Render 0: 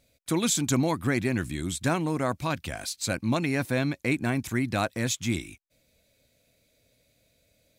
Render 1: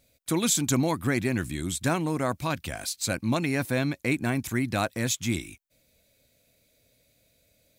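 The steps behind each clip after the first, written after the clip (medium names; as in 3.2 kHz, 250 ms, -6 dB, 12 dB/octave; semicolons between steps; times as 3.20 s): treble shelf 11 kHz +7.5 dB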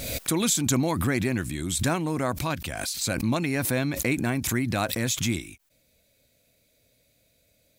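swell ahead of each attack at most 38 dB/s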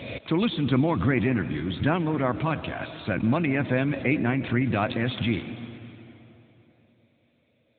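reverberation RT60 3.3 s, pre-delay 110 ms, DRR 10.5 dB; trim +2 dB; AMR-NB 10.2 kbps 8 kHz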